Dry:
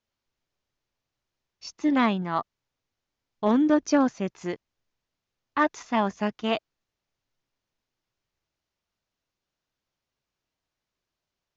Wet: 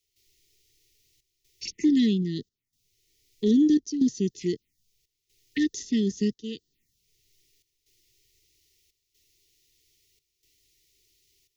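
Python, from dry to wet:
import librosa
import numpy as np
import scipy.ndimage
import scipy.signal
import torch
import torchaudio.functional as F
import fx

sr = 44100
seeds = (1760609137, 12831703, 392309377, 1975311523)

y = fx.high_shelf(x, sr, hz=4300.0, db=11.5)
y = fx.env_phaser(y, sr, low_hz=210.0, high_hz=2300.0, full_db=-28.5)
y = fx.step_gate(y, sr, bpm=187, pattern='..xxxxxxxxxxxxx.', floor_db=-12.0, edge_ms=4.5)
y = fx.brickwall_bandstop(y, sr, low_hz=460.0, high_hz=1800.0)
y = fx.band_squash(y, sr, depth_pct=40)
y = F.gain(torch.from_numpy(y), 4.0).numpy()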